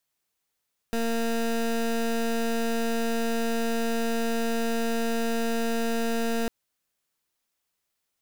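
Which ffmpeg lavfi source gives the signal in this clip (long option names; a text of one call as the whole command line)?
ffmpeg -f lavfi -i "aevalsrc='0.0501*(2*lt(mod(230*t,1),0.21)-1)':duration=5.55:sample_rate=44100" out.wav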